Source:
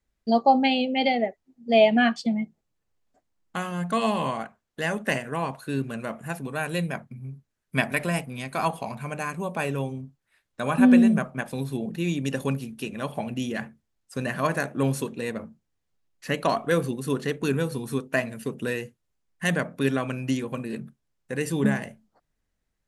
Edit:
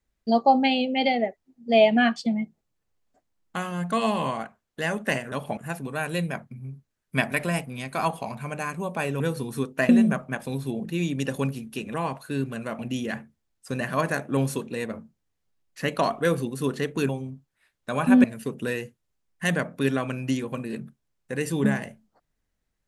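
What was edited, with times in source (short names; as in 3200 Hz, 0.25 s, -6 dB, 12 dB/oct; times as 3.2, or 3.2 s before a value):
5.32–6.17 swap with 13–13.25
9.8–10.95 swap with 17.55–18.24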